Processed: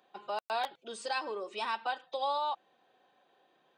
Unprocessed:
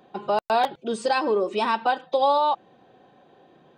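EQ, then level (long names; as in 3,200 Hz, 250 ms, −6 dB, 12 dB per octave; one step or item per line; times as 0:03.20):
high-pass filter 1,300 Hz 6 dB per octave
−6.5 dB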